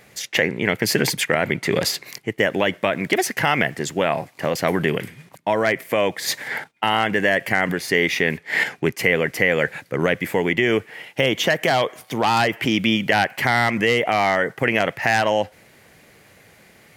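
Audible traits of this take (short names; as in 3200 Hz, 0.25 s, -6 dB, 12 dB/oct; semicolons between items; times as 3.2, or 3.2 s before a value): noise floor -53 dBFS; spectral tilt -4.0 dB/oct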